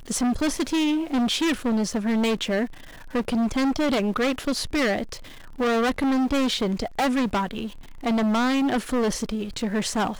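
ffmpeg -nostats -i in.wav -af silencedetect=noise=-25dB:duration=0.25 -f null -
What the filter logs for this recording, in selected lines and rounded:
silence_start: 2.65
silence_end: 3.15 | silence_duration: 0.49
silence_start: 5.13
silence_end: 5.60 | silence_duration: 0.47
silence_start: 7.66
silence_end: 8.06 | silence_duration: 0.39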